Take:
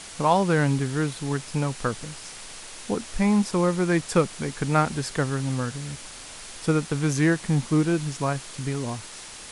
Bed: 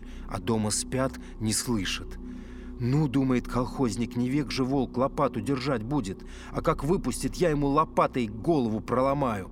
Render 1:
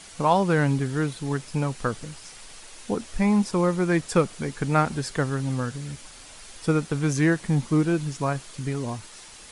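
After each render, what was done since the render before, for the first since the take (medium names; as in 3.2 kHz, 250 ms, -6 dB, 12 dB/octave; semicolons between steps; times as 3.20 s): noise reduction 6 dB, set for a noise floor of -41 dBFS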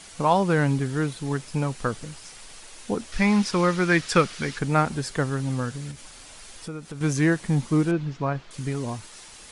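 3.12–4.59 s: high-order bell 2.7 kHz +8 dB 2.5 oct; 5.91–7.01 s: compression 2.5:1, threshold -37 dBFS; 7.91–8.51 s: distance through air 210 m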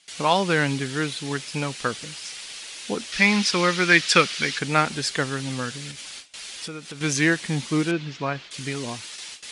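gate with hold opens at -34 dBFS; frequency weighting D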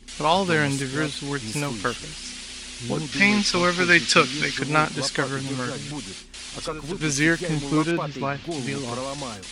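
add bed -7 dB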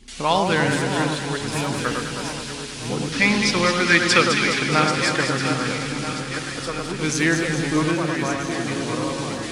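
backward echo that repeats 643 ms, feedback 61%, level -9 dB; echo whose repeats swap between lows and highs 104 ms, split 1.5 kHz, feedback 77%, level -4 dB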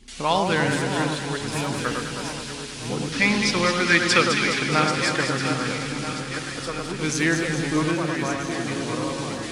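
trim -2 dB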